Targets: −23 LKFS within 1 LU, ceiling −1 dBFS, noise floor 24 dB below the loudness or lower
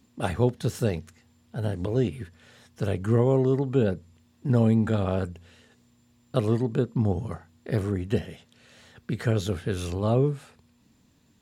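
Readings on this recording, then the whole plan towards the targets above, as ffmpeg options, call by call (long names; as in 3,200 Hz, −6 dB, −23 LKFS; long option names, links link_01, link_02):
integrated loudness −26.5 LKFS; sample peak −8.5 dBFS; target loudness −23.0 LKFS
→ -af "volume=3.5dB"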